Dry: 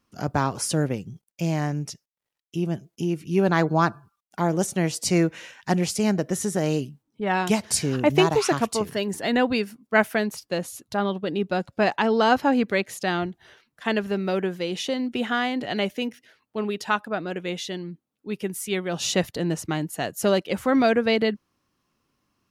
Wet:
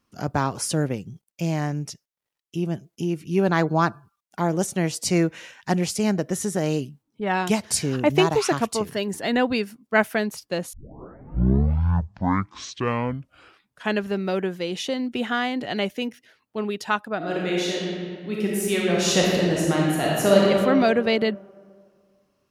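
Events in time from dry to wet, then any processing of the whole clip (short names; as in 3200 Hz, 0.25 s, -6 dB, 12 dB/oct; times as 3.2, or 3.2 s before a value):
10.73 tape start 3.31 s
17.17–20.5 reverb throw, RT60 2.1 s, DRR -4.5 dB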